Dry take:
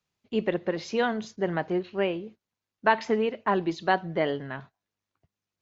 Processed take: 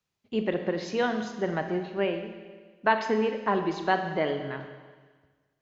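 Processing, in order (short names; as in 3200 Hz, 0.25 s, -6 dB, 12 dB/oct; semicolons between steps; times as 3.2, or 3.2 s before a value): Schroeder reverb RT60 1.5 s, combs from 29 ms, DRR 6.5 dB; gain -1.5 dB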